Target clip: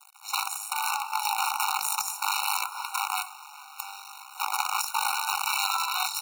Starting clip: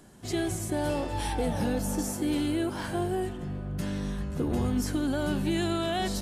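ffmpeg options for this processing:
-af "acrusher=bits=5:dc=4:mix=0:aa=0.000001,afftfilt=real='re*eq(mod(floor(b*sr/1024/740),2),1)':imag='im*eq(mod(floor(b*sr/1024/740),2),1)':win_size=1024:overlap=0.75,volume=2.66"

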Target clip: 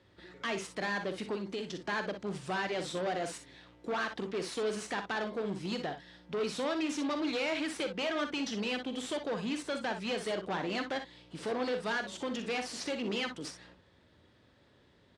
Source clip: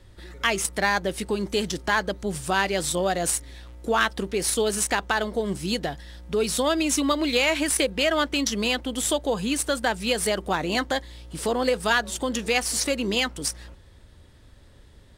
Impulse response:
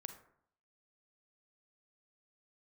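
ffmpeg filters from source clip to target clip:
-filter_complex "[0:a]asplit=3[s0][s1][s2];[s0]afade=t=out:st=1.35:d=0.02[s3];[s1]acompressor=threshold=0.0447:ratio=6,afade=t=in:st=1.35:d=0.02,afade=t=out:st=1.86:d=0.02[s4];[s2]afade=t=in:st=1.86:d=0.02[s5];[s3][s4][s5]amix=inputs=3:normalize=0,asoftclip=type=hard:threshold=0.0631,highpass=150,lowpass=4300,aecho=1:1:44|60:0.251|0.335,volume=0.473"

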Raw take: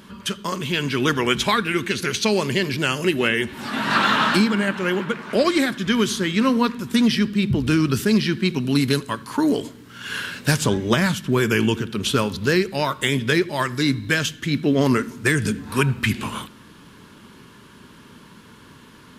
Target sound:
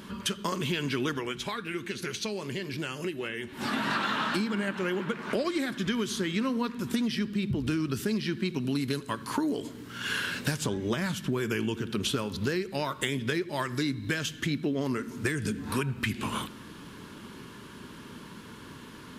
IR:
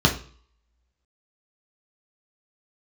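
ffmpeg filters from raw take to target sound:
-filter_complex "[0:a]equalizer=f=330:t=o:w=0.79:g=2.5,acompressor=threshold=0.0447:ratio=6,asplit=3[s0][s1][s2];[s0]afade=t=out:st=1.18:d=0.02[s3];[s1]flanger=delay=5.3:depth=1.8:regen=-75:speed=1:shape=sinusoidal,afade=t=in:st=1.18:d=0.02,afade=t=out:st=3.6:d=0.02[s4];[s2]afade=t=in:st=3.6:d=0.02[s5];[s3][s4][s5]amix=inputs=3:normalize=0"

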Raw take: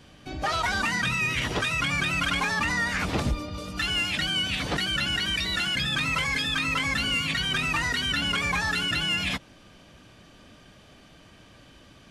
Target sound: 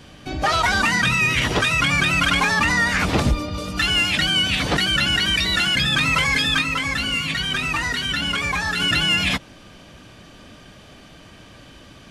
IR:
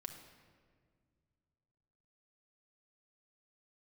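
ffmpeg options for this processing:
-filter_complex "[0:a]asplit=3[s0][s1][s2];[s0]afade=t=out:st=6.61:d=0.02[s3];[s1]flanger=delay=2:depth=4.6:regen=-71:speed=1.3:shape=triangular,afade=t=in:st=6.61:d=0.02,afade=t=out:st=8.79:d=0.02[s4];[s2]afade=t=in:st=8.79:d=0.02[s5];[s3][s4][s5]amix=inputs=3:normalize=0,volume=2.37"

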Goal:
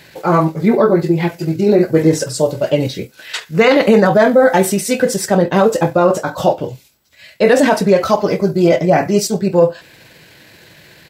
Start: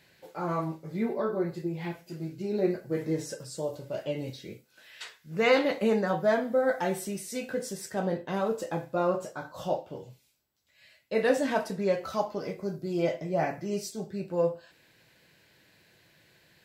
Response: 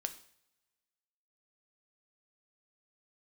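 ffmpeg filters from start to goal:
-af "atempo=1.5,alimiter=level_in=10:limit=0.891:release=50:level=0:latency=1,volume=0.891"

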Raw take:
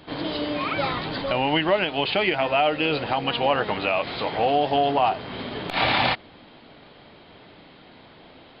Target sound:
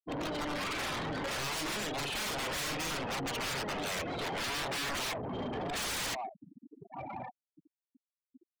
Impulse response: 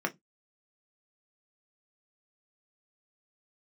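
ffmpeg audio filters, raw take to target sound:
-filter_complex "[0:a]lowpass=f=2400:p=1,aecho=1:1:1160:0.15,aeval=exprs='(mod(13.3*val(0)+1,2)-1)/13.3':c=same,asettb=1/sr,asplit=3[s0][s1][s2];[s0]atrim=end=0.584[s3];[s1]atrim=start=0.58:end=3.04,asetpts=PTS-STARTPTS,afade=t=in:d=0.004:c=qsin,afade=t=out:st=2.456:d=0.004:c=qsin,asplit=2[s4][s5];[s5]adelay=43,volume=0.562[s6];[s4][s6]amix=inputs=2:normalize=0,atrim=end_sample=108486[s7];[s2]atrim=start=3.036[s8];[s3][s7]acrossfade=d=0.004:c1=hsin:c2=qsin[s9];[s9][s8]acrossfade=d=0.004:c1=qsin:c2=hsin,afftfilt=real='re*gte(hypot(re,im),0.0316)':imag='im*gte(hypot(re,im),0.0316)':win_size=1024:overlap=0.75,acompressor=threshold=0.0355:ratio=6,asoftclip=type=tanh:threshold=0.0178,volume=1.26"

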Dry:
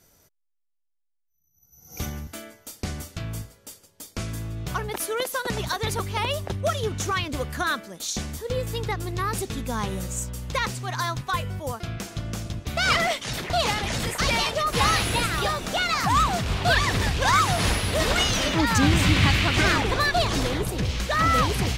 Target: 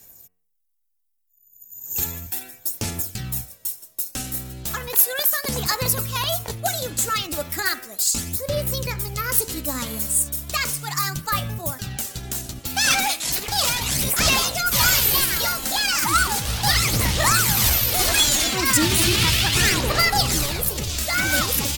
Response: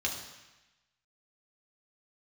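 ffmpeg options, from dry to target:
-af "asetrate=50951,aresample=44100,atempo=0.865537,aemphasis=mode=production:type=75fm,aphaser=in_gain=1:out_gain=1:delay=3.8:decay=0.42:speed=0.35:type=sinusoidal,bandreject=f=90.43:t=h:w=4,bandreject=f=180.86:t=h:w=4,bandreject=f=271.29:t=h:w=4,bandreject=f=361.72:t=h:w=4,bandreject=f=452.15:t=h:w=4,bandreject=f=542.58:t=h:w=4,bandreject=f=633.01:t=h:w=4,bandreject=f=723.44:t=h:w=4,bandreject=f=813.87:t=h:w=4,bandreject=f=904.3:t=h:w=4,bandreject=f=994.73:t=h:w=4,bandreject=f=1085.16:t=h:w=4,bandreject=f=1175.59:t=h:w=4,bandreject=f=1266.02:t=h:w=4,bandreject=f=1356.45:t=h:w=4,bandreject=f=1446.88:t=h:w=4,bandreject=f=1537.31:t=h:w=4,bandreject=f=1627.74:t=h:w=4,bandreject=f=1718.17:t=h:w=4,bandreject=f=1808.6:t=h:w=4,bandreject=f=1899.03:t=h:w=4,bandreject=f=1989.46:t=h:w=4,bandreject=f=2079.89:t=h:w=4,bandreject=f=2170.32:t=h:w=4,bandreject=f=2260.75:t=h:w=4,bandreject=f=2351.18:t=h:w=4,bandreject=f=2441.61:t=h:w=4,bandreject=f=2532.04:t=h:w=4,bandreject=f=2622.47:t=h:w=4,bandreject=f=2712.9:t=h:w=4,bandreject=f=2803.33:t=h:w=4,bandreject=f=2893.76:t=h:w=4,bandreject=f=2984.19:t=h:w=4,bandreject=f=3074.62:t=h:w=4,volume=0.841"

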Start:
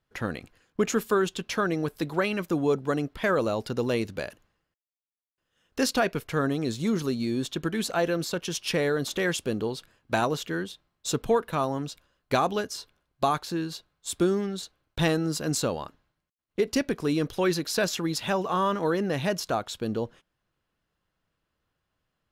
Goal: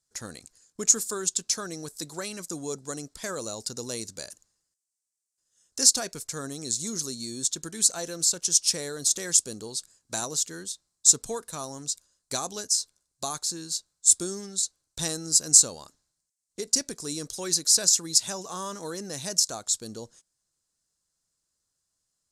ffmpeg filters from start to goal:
-af "lowpass=f=7900:t=q:w=2.4,aexciter=amount=12.8:drive=1.8:freq=4300,volume=0.299"

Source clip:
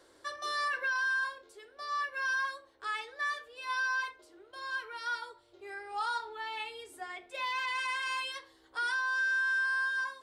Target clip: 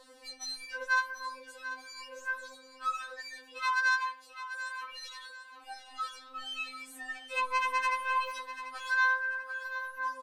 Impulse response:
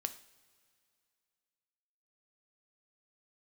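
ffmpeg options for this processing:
-filter_complex "[0:a]alimiter=level_in=2.11:limit=0.0631:level=0:latency=1:release=162,volume=0.473,asoftclip=type=tanh:threshold=0.015,asettb=1/sr,asplit=3[s0][s1][s2];[s0]atrim=end=3.584[s3];[s1]atrim=start=3.58:end=4.84,asetpts=PTS-STARTPTS,afade=t=in:d=0.004:c=qsin,afade=t=out:st=1.256:d=0.004:c=qsin,highpass=1000[s4];[s2]atrim=start=4.836[s5];[s3][s4]acrossfade=d=0.004:c1=hsin:c2=qsin[s6];[s6][s5]acrossfade=d=0.004:c1=qsin:c2=hsin,aecho=1:1:740|1480|2220:0.251|0.0829|0.0274,afftfilt=real='re*3.46*eq(mod(b,12),0)':imag='im*3.46*eq(mod(b,12),0)':win_size=2048:overlap=0.75,volume=2.37"

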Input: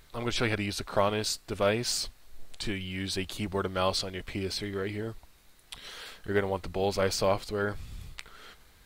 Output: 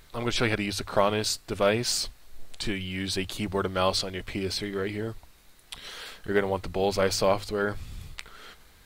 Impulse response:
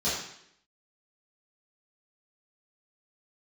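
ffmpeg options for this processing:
-af "bandreject=f=50:t=h:w=6,bandreject=f=100:t=h:w=6,volume=1.41"

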